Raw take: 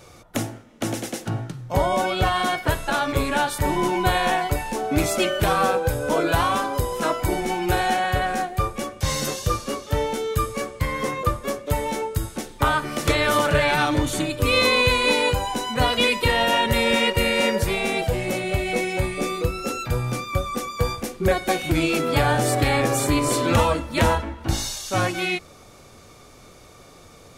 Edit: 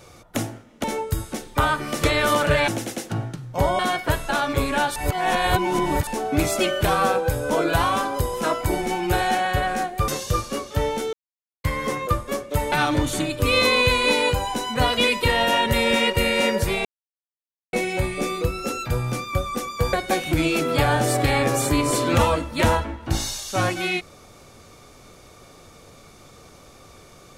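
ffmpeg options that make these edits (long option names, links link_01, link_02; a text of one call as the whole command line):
ffmpeg -i in.wav -filter_complex "[0:a]asplit=13[link_01][link_02][link_03][link_04][link_05][link_06][link_07][link_08][link_09][link_10][link_11][link_12][link_13];[link_01]atrim=end=0.842[link_14];[link_02]atrim=start=11.878:end=13.722[link_15];[link_03]atrim=start=0.838:end=1.952[link_16];[link_04]atrim=start=2.378:end=3.552[link_17];[link_05]atrim=start=3.548:end=4.662,asetpts=PTS-STARTPTS,areverse[link_18];[link_06]atrim=start=4.658:end=8.672[link_19];[link_07]atrim=start=9.238:end=10.29,asetpts=PTS-STARTPTS,afade=type=out:start_time=1.048:duration=0.004:curve=hsin[link_20];[link_08]atrim=start=10.29:end=10.8,asetpts=PTS-STARTPTS,volume=0[link_21];[link_09]atrim=start=10.8:end=11.882,asetpts=PTS-STARTPTS,afade=type=in:duration=0.004:curve=hsin[link_22];[link_10]atrim=start=13.718:end=17.85,asetpts=PTS-STARTPTS,afade=type=out:start_time=4.128:duration=0.004:curve=hsin[link_23];[link_11]atrim=start=17.85:end=18.73,asetpts=PTS-STARTPTS,volume=0[link_24];[link_12]atrim=start=18.73:end=20.932,asetpts=PTS-STARTPTS,afade=type=in:duration=0.004:curve=hsin[link_25];[link_13]atrim=start=21.308[link_26];[link_14][link_15]acrossfade=duration=0.004:curve1=hsin:curve2=hsin[link_27];[link_27][link_16]acrossfade=duration=0.004:curve1=hsin:curve2=hsin[link_28];[link_28][link_17]acrossfade=duration=0.004:curve1=hsin:curve2=hsin[link_29];[link_29][link_18]acrossfade=duration=0.004:curve1=hsin:curve2=hsin[link_30];[link_30][link_19]acrossfade=duration=0.004:curve1=hsin:curve2=hsin[link_31];[link_20][link_21][link_22]concat=n=3:v=0:a=1[link_32];[link_31][link_32]acrossfade=duration=0.004:curve1=hsin:curve2=hsin[link_33];[link_23][link_24][link_25]concat=n=3:v=0:a=1[link_34];[link_33][link_34]acrossfade=duration=0.004:curve1=hsin:curve2=hsin[link_35];[link_35][link_26]acrossfade=duration=0.004:curve1=hsin:curve2=hsin" out.wav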